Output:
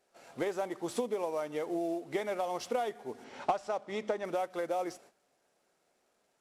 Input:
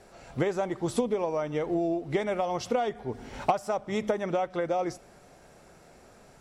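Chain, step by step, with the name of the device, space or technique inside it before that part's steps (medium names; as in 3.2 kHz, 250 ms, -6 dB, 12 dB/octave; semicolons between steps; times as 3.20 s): gate -50 dBFS, range -15 dB; early wireless headset (high-pass 280 Hz 12 dB/octave; CVSD coder 64 kbps); 3.24–4.25 s: low-pass 6.1 kHz 12 dB/octave; trim -4.5 dB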